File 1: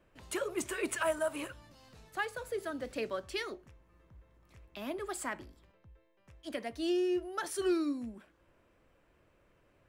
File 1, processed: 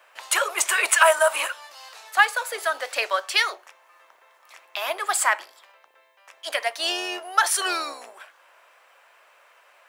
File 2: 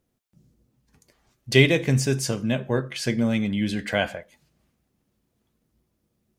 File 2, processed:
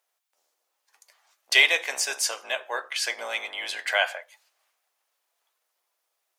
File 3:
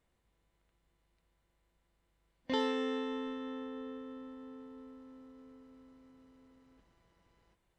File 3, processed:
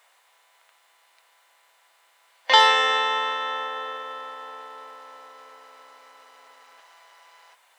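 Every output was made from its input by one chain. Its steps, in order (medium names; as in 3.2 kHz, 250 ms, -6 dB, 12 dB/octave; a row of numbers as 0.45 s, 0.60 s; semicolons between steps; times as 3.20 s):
octave divider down 2 oct, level +4 dB; inverse Chebyshev high-pass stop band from 160 Hz, stop band 70 dB; peak normalisation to -3 dBFS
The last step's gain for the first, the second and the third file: +18.5 dB, +4.0 dB, +23.0 dB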